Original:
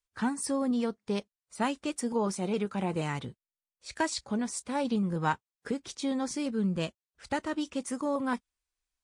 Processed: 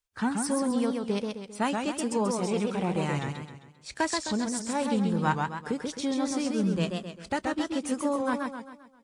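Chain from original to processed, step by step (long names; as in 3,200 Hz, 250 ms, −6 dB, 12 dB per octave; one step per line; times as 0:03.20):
feedback echo with a swinging delay time 132 ms, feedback 45%, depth 138 cents, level −4 dB
level +1.5 dB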